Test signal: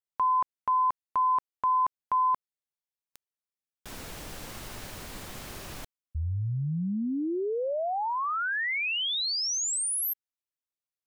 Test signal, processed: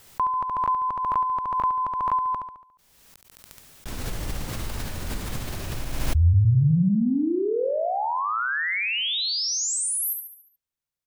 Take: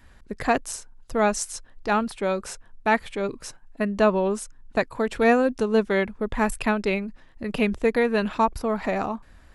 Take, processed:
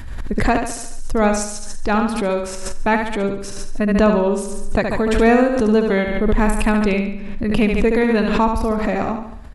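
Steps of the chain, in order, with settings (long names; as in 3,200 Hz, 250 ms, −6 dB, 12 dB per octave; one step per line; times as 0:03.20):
low-shelf EQ 180 Hz +11 dB
repeating echo 71 ms, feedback 48%, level −6 dB
background raised ahead of every attack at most 36 dB per second
level +2 dB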